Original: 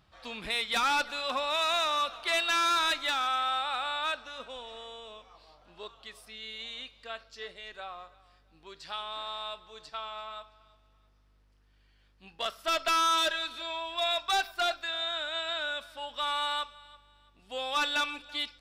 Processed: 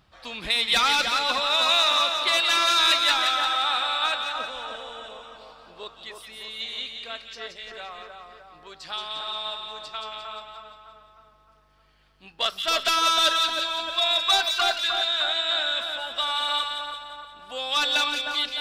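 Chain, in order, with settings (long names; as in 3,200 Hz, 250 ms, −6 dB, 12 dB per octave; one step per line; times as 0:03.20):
dynamic equaliser 4,100 Hz, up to +6 dB, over −45 dBFS, Q 1.2
echo with a time of its own for lows and highs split 1,800 Hz, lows 306 ms, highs 175 ms, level −4.5 dB
harmonic and percussive parts rebalanced percussive +5 dB
level +1.5 dB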